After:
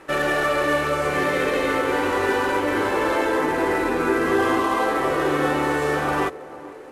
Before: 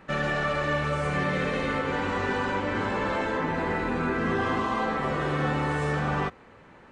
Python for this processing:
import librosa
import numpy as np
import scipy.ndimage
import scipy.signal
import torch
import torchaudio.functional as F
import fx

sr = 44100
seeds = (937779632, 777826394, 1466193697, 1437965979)

y = fx.cvsd(x, sr, bps=64000)
y = fx.low_shelf_res(y, sr, hz=260.0, db=-6.5, q=3.0)
y = fx.echo_banded(y, sr, ms=453, feedback_pct=66, hz=420.0, wet_db=-15)
y = y * 10.0 ** (5.5 / 20.0)